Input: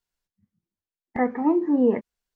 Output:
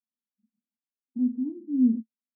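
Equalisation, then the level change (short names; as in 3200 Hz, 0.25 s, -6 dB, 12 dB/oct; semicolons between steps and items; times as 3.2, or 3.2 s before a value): Butterworth band-pass 240 Hz, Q 5; +2.0 dB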